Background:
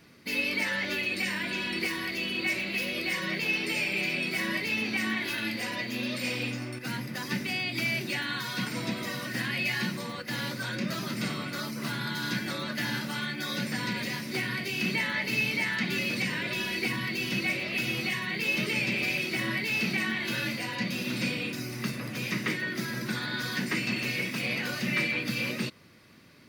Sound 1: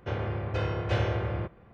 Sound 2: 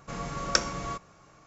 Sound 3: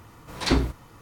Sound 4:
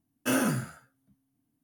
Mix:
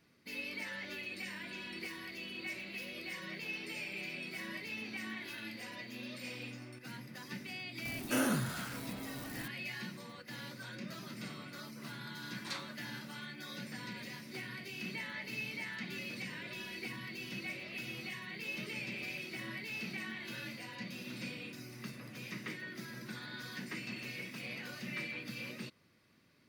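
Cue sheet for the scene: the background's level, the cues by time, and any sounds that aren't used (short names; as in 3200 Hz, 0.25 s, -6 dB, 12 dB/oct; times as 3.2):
background -13 dB
7.85 add 4 -7 dB + zero-crossing step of -32.5 dBFS
12.04 add 3 -14.5 dB + HPF 980 Hz 24 dB/oct
not used: 1, 2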